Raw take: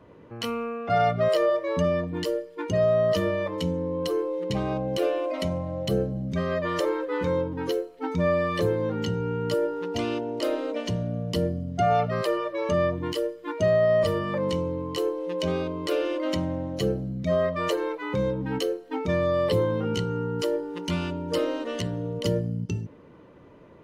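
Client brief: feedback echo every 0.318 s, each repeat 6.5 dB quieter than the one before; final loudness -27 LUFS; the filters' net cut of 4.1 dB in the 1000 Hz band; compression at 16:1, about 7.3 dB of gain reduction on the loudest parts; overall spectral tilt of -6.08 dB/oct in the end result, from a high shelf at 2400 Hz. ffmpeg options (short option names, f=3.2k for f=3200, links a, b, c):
-af "equalizer=f=1k:t=o:g=-5.5,highshelf=f=2.4k:g=-5,acompressor=threshold=-27dB:ratio=16,aecho=1:1:318|636|954|1272|1590|1908:0.473|0.222|0.105|0.0491|0.0231|0.0109,volume=4.5dB"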